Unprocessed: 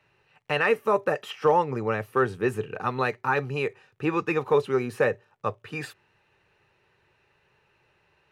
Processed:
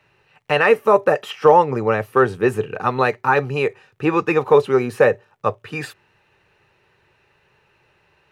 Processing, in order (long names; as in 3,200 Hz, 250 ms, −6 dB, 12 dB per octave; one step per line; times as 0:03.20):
dynamic equaliser 650 Hz, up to +4 dB, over −33 dBFS, Q 0.94
level +6 dB